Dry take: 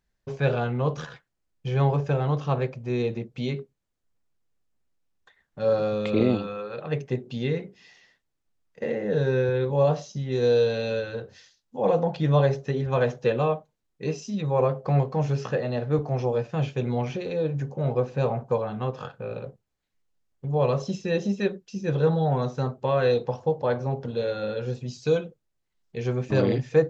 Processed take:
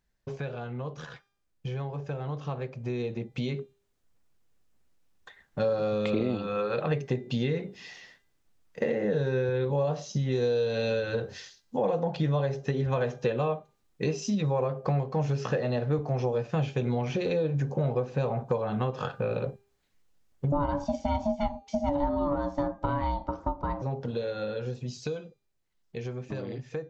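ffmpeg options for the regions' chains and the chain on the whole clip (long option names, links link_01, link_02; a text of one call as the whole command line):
ffmpeg -i in.wav -filter_complex "[0:a]asettb=1/sr,asplit=3[link_01][link_02][link_03];[link_01]atrim=end=20.524[link_04];[link_02]atrim=start=20.52:end=23.82,asetpts=PTS-STARTPTS,afade=type=in:duration=0.004:curve=qsin,afade=type=out:start_time=3.296:duration=0.004:curve=qsin,tiltshelf=frequency=840:gain=5,aeval=exprs='val(0)*sin(2*PI*430*n/s)':channel_layout=same[link_05];[link_03]atrim=start=23.816[link_06];[link_04][link_05]acrossfade=duration=0.004:curve1=hsin:curve2=qsin[link_07];[link_07][link_06]acrossfade=duration=0.004:curve1=qsin:curve2=hsin,acompressor=threshold=-33dB:ratio=6,bandreject=frequency=400.2:width_type=h:width=4,bandreject=frequency=800.4:width_type=h:width=4,bandreject=frequency=1200.6:width_type=h:width=4,bandreject=frequency=1600.8:width_type=h:width=4,bandreject=frequency=2001:width_type=h:width=4,bandreject=frequency=2401.2:width_type=h:width=4,bandreject=frequency=2801.4:width_type=h:width=4,bandreject=frequency=3201.6:width_type=h:width=4,bandreject=frequency=3601.8:width_type=h:width=4,bandreject=frequency=4002:width_type=h:width=4,bandreject=frequency=4402.2:width_type=h:width=4,bandreject=frequency=4802.4:width_type=h:width=4,bandreject=frequency=5202.6:width_type=h:width=4,bandreject=frequency=5602.8:width_type=h:width=4,bandreject=frequency=6003:width_type=h:width=4,bandreject=frequency=6403.2:width_type=h:width=4,bandreject=frequency=6803.4:width_type=h:width=4,bandreject=frequency=7203.6:width_type=h:width=4,bandreject=frequency=7603.8:width_type=h:width=4,bandreject=frequency=8004:width_type=h:width=4,bandreject=frequency=8404.2:width_type=h:width=4,bandreject=frequency=8804.4:width_type=h:width=4,bandreject=frequency=9204.6:width_type=h:width=4,bandreject=frequency=9604.8:width_type=h:width=4,bandreject=frequency=10005:width_type=h:width=4,bandreject=frequency=10405.2:width_type=h:width=4,bandreject=frequency=10805.4:width_type=h:width=4,bandreject=frequency=11205.6:width_type=h:width=4,bandreject=frequency=11605.8:width_type=h:width=4,bandreject=frequency=12006:width_type=h:width=4,bandreject=frequency=12406.2:width_type=h:width=4,bandreject=frequency=12806.4:width_type=h:width=4,bandreject=frequency=13206.6:width_type=h:width=4,bandreject=frequency=13606.8:width_type=h:width=4,dynaudnorm=framelen=330:gausssize=21:maxgain=8dB" out.wav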